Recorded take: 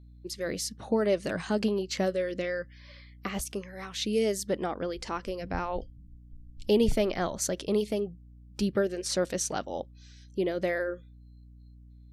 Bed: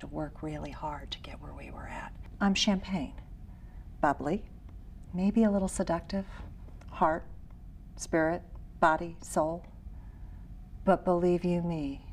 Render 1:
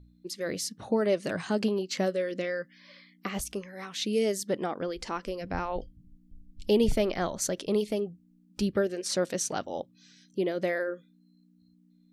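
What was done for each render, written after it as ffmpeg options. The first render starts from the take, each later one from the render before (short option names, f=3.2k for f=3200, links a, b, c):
-af "bandreject=f=60:t=h:w=4,bandreject=f=120:t=h:w=4"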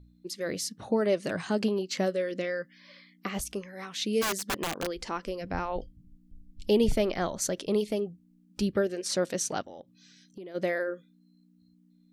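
-filter_complex "[0:a]asplit=3[a][b][c];[a]afade=t=out:st=4.21:d=0.02[d];[b]aeval=exprs='(mod(16.8*val(0)+1,2)-1)/16.8':c=same,afade=t=in:st=4.21:d=0.02,afade=t=out:st=4.98:d=0.02[e];[c]afade=t=in:st=4.98:d=0.02[f];[d][e][f]amix=inputs=3:normalize=0,asplit=3[g][h][i];[g]afade=t=out:st=9.61:d=0.02[j];[h]acompressor=threshold=-41dB:ratio=6:attack=3.2:release=140:knee=1:detection=peak,afade=t=in:st=9.61:d=0.02,afade=t=out:st=10.54:d=0.02[k];[i]afade=t=in:st=10.54:d=0.02[l];[j][k][l]amix=inputs=3:normalize=0"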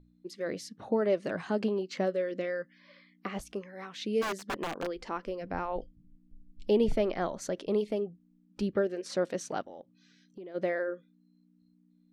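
-af "lowpass=f=1.6k:p=1,equalizer=f=69:w=0.52:g=-9"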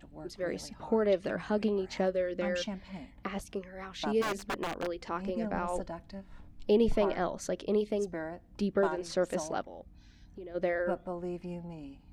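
-filter_complex "[1:a]volume=-11dB[a];[0:a][a]amix=inputs=2:normalize=0"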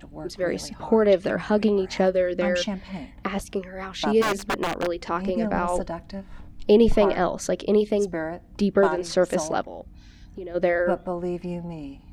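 -af "volume=9dB"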